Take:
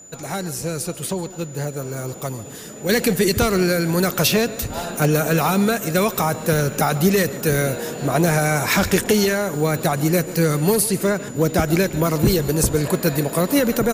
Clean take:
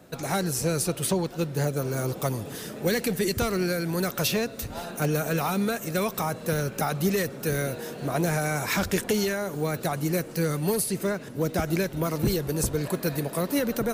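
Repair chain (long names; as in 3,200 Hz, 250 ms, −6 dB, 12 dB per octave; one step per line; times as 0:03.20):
notch filter 7,000 Hz, Q 30
echo removal 143 ms −17.5 dB
level correction −8 dB, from 0:02.89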